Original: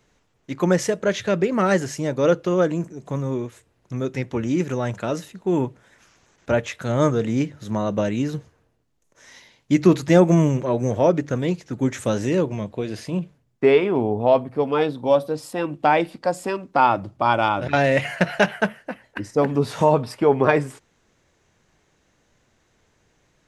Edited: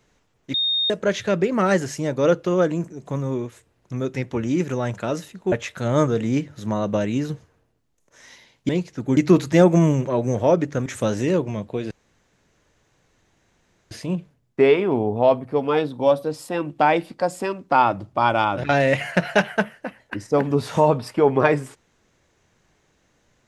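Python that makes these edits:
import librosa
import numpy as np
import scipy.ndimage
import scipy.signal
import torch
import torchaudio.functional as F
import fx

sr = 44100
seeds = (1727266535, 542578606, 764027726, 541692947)

y = fx.edit(x, sr, fx.bleep(start_s=0.54, length_s=0.36, hz=3690.0, db=-18.5),
    fx.cut(start_s=5.52, length_s=1.04),
    fx.move(start_s=11.42, length_s=0.48, to_s=9.73),
    fx.insert_room_tone(at_s=12.95, length_s=2.0), tone=tone)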